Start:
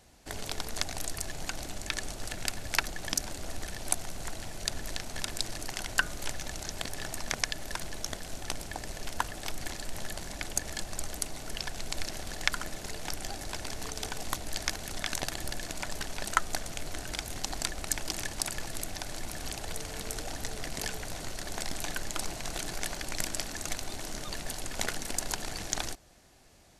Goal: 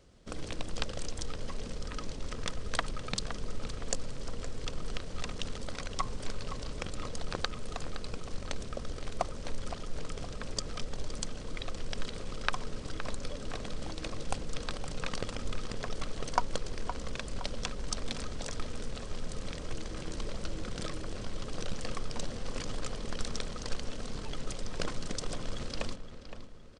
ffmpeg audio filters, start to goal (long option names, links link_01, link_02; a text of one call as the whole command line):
ffmpeg -i in.wav -filter_complex "[0:a]tiltshelf=frequency=910:gain=5,bandreject=frequency=50:width_type=h:width=6,bandreject=frequency=100:width_type=h:width=6,bandreject=frequency=150:width_type=h:width=6,bandreject=frequency=200:width_type=h:width=6,bandreject=frequency=250:width_type=h:width=6,bandreject=frequency=300:width_type=h:width=6,bandreject=frequency=350:width_type=h:width=6,bandreject=frequency=400:width_type=h:width=6,bandreject=frequency=450:width_type=h:width=6,asetrate=32097,aresample=44100,atempo=1.37395,asplit=2[link_01][link_02];[link_02]adelay=516,lowpass=frequency=3200:poles=1,volume=-10dB,asplit=2[link_03][link_04];[link_04]adelay=516,lowpass=frequency=3200:poles=1,volume=0.46,asplit=2[link_05][link_06];[link_06]adelay=516,lowpass=frequency=3200:poles=1,volume=0.46,asplit=2[link_07][link_08];[link_08]adelay=516,lowpass=frequency=3200:poles=1,volume=0.46,asplit=2[link_09][link_10];[link_10]adelay=516,lowpass=frequency=3200:poles=1,volume=0.46[link_11];[link_03][link_05][link_07][link_09][link_11]amix=inputs=5:normalize=0[link_12];[link_01][link_12]amix=inputs=2:normalize=0,volume=-1.5dB" out.wav